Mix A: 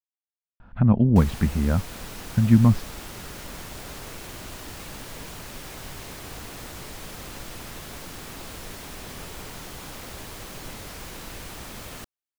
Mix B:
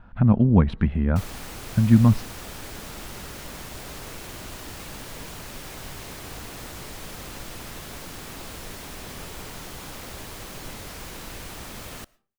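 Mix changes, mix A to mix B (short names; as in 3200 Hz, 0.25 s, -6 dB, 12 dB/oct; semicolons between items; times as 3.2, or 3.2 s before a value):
speech: entry -0.60 s; reverb: on, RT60 0.40 s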